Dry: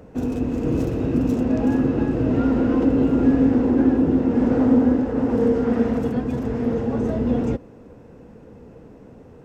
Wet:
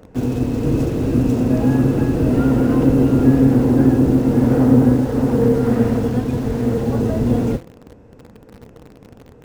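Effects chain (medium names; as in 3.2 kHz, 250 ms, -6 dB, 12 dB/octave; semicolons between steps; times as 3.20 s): octave divider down 1 oct, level -4 dB; de-hum 169 Hz, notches 37; in parallel at -4.5 dB: bit crusher 6-bit; on the sum: trim -1 dB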